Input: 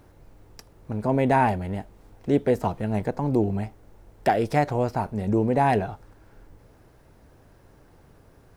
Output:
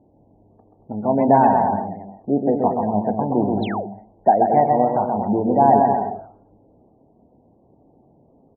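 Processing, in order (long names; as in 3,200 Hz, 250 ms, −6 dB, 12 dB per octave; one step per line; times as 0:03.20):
low-pass that shuts in the quiet parts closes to 450 Hz, open at −20.5 dBFS
parametric band 230 Hz +10 dB 0.99 octaves
double-tracking delay 29 ms −10.5 dB
on a send: bouncing-ball delay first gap 130 ms, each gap 0.75×, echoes 5
on the sum: sound drawn into the spectrogram fall, 0:03.62–0:03.87, 300–4,400 Hz −30 dBFS
high-pass filter 130 Hz 6 dB per octave
parametric band 740 Hz +13.5 dB 0.9 octaves
gate on every frequency bin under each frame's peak −30 dB strong
level −5.5 dB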